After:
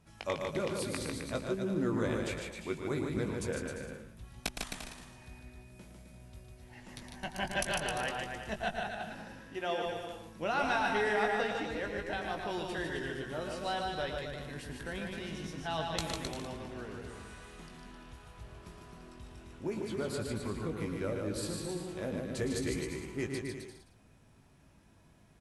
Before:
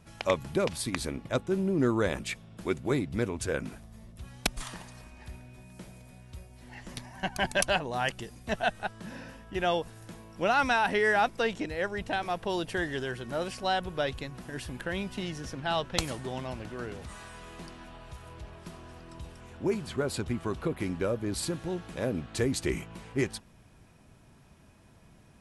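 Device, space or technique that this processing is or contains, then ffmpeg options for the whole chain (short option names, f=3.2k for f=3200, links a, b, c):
slapback doubling: -filter_complex "[0:a]asplit=3[a][b][c];[b]adelay=19,volume=-7.5dB[d];[c]adelay=113,volume=-8dB[e];[a][d][e]amix=inputs=3:normalize=0,asettb=1/sr,asplit=3[f][g][h];[f]atrim=end=9.394[i];[g]atrim=start=9.39:end=9.86,asetpts=PTS-STARTPTS,afade=t=in:d=0.004:c=qsin,afade=t=out:st=0.466:d=0.004:c=qsin,highpass=200[j];[h]atrim=start=9.856[k];[i][j]acrossfade=d=0.004:c1=hsin:c2=qsin[l];[l][k]acrossfade=d=0.004:c1=qsin:c2=hsin,aecho=1:1:150|262.5|346.9|410.2|457.6:0.631|0.398|0.251|0.158|0.1,volume=-8dB"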